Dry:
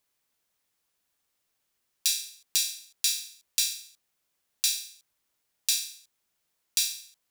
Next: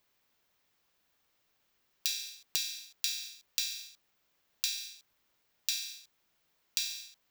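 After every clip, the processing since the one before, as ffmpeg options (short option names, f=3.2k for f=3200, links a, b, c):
-filter_complex "[0:a]equalizer=f=10k:t=o:w=0.95:g=-13.5,acrossover=split=500[a][b];[b]acompressor=threshold=-35dB:ratio=6[c];[a][c]amix=inputs=2:normalize=0,volume=5.5dB"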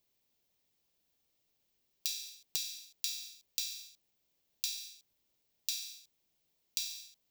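-af "equalizer=f=1.4k:w=0.91:g=-13,volume=-2dB"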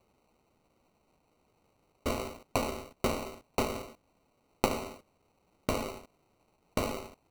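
-af "acrusher=samples=26:mix=1:aa=0.000001,volume=7.5dB"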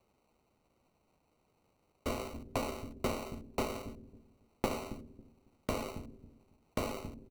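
-filter_complex "[0:a]acrossover=split=340[a][b];[a]aecho=1:1:275|550|825:0.501|0.125|0.0313[c];[b]asoftclip=type=tanh:threshold=-18dB[d];[c][d]amix=inputs=2:normalize=0,volume=-3.5dB"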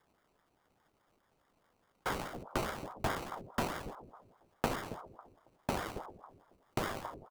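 -af "aeval=exprs='val(0)*sin(2*PI*570*n/s+570*0.8/4.8*sin(2*PI*4.8*n/s))':c=same,volume=3dB"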